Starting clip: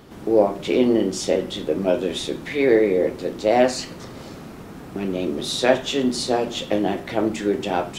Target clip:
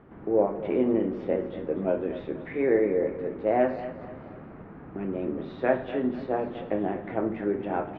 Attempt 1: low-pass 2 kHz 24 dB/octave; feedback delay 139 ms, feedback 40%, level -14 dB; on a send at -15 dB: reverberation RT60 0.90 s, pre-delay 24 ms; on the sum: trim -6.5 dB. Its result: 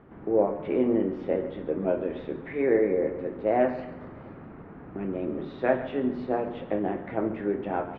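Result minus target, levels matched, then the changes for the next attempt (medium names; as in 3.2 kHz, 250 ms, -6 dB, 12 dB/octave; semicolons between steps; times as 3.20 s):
echo 106 ms early
change: feedback delay 245 ms, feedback 40%, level -14 dB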